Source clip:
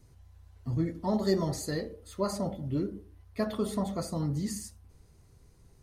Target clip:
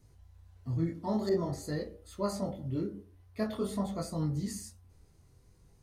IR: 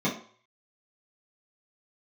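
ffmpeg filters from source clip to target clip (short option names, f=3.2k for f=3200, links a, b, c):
-filter_complex "[0:a]flanger=delay=19:depth=5.5:speed=0.49,asettb=1/sr,asplit=3[a][b][c];[a]atrim=end=1.294[d];[b]atrim=start=1.29:end=1.81,asetpts=PTS-STARTPTS,afade=t=in:d=0.004:c=qsin,afade=t=out:st=0.516:d=0.004:c=qsin,adynamicequalizer=threshold=0.00282:dfrequency=2000:dqfactor=0.7:tfrequency=2000:tqfactor=0.7:attack=5:release=100:ratio=0.375:range=3.5:mode=cutabove:tftype=highshelf[e];[c]atrim=start=1.806[f];[d][e]acrossfade=d=0.004:c1=hsin:c2=qsin[g];[g][f]acrossfade=d=0.004:c1=qsin:c2=hsin"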